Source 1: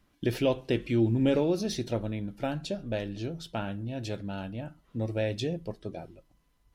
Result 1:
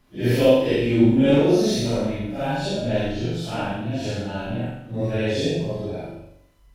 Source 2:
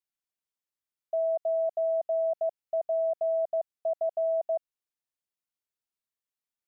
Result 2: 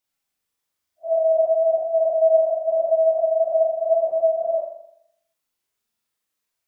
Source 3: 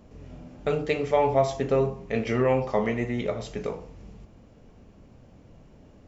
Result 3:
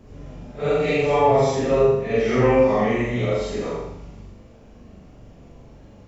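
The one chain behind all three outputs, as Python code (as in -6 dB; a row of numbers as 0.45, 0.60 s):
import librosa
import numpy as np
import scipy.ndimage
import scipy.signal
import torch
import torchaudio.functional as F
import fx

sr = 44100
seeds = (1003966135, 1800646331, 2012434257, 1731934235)

y = fx.phase_scramble(x, sr, seeds[0], window_ms=200)
y = fx.room_flutter(y, sr, wall_m=7.2, rt60_s=0.73)
y = y * 10.0 ** (-22 / 20.0) / np.sqrt(np.mean(np.square(y)))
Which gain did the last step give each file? +6.5, +9.5, +4.0 dB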